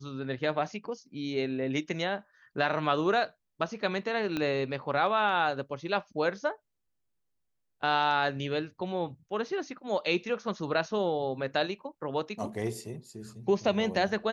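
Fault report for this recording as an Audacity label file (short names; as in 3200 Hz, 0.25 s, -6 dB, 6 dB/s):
4.370000	4.370000	pop -18 dBFS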